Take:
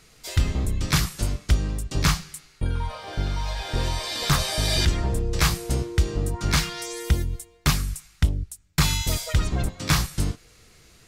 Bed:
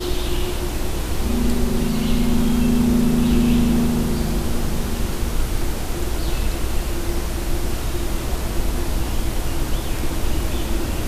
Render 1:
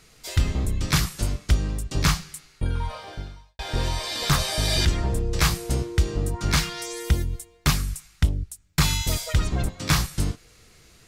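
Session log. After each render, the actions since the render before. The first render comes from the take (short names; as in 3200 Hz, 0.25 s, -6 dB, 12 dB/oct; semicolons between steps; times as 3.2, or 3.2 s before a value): 2.98–3.59 fade out quadratic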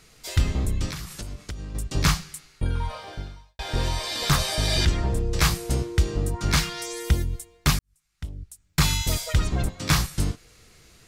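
0.89–1.75 compressor 12:1, threshold -30 dBFS; 4.55–5.17 high shelf 11000 Hz -8 dB; 7.79–8.81 fade in quadratic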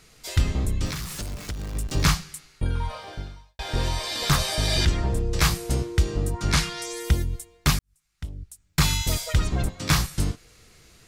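0.83–2.15 zero-crossing step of -35 dBFS; 6.44–6.87 LPF 12000 Hz 24 dB/oct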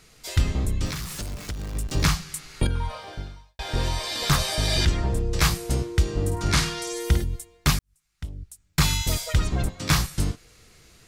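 2.02–2.67 three-band squash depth 100%; 6.12–7.24 flutter echo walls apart 8.8 m, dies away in 0.39 s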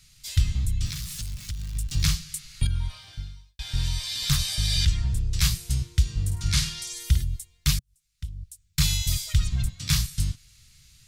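EQ curve 130 Hz 0 dB, 440 Hz -27 dB, 3500 Hz 0 dB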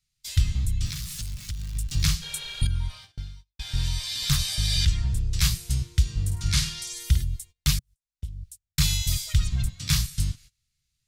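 2.25–2.59 spectral repair 380–4600 Hz after; gate -44 dBFS, range -23 dB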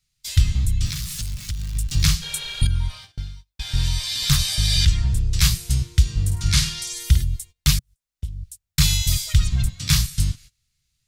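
gain +5 dB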